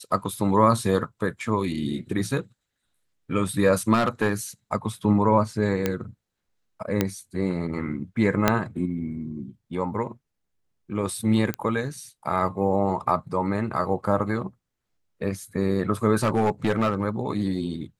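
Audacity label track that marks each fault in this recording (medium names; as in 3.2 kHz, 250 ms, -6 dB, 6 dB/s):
3.930000	4.330000	clipped -16.5 dBFS
5.860000	5.860000	pop -9 dBFS
7.010000	7.010000	pop -7 dBFS
8.480000	8.480000	pop -3 dBFS
11.540000	11.540000	pop -13 dBFS
16.160000	17.040000	clipped -17 dBFS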